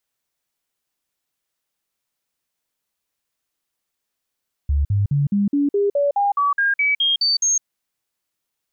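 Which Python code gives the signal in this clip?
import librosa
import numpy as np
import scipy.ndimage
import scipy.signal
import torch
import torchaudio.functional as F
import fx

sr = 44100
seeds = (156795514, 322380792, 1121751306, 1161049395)

y = fx.stepped_sweep(sr, from_hz=71.4, direction='up', per_octave=2, tones=14, dwell_s=0.16, gap_s=0.05, level_db=-15.0)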